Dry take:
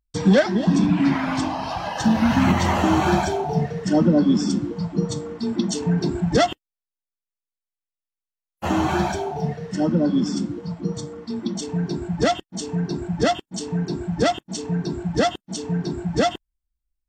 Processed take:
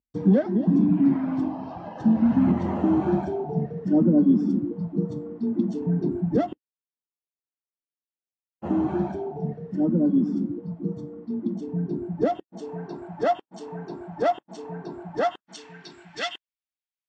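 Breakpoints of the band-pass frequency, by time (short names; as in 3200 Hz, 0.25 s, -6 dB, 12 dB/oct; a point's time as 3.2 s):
band-pass, Q 1.2
11.91 s 270 Hz
12.91 s 770 Hz
15.15 s 770 Hz
15.73 s 2600 Hz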